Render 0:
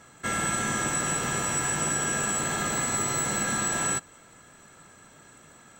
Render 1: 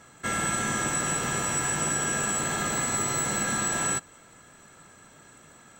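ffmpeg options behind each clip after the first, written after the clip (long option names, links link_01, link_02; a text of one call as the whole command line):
ffmpeg -i in.wav -af anull out.wav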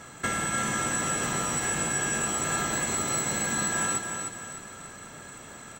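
ffmpeg -i in.wav -filter_complex "[0:a]acompressor=threshold=-33dB:ratio=10,asplit=2[link_01][link_02];[link_02]aecho=0:1:303|606|909|1212|1515:0.501|0.216|0.0927|0.0398|0.0171[link_03];[link_01][link_03]amix=inputs=2:normalize=0,volume=7dB" out.wav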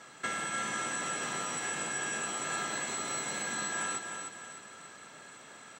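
ffmpeg -i in.wav -af "aemphasis=mode=production:type=bsi,acrusher=bits=7:mix=0:aa=0.000001,highpass=100,lowpass=4200,volume=-5.5dB" out.wav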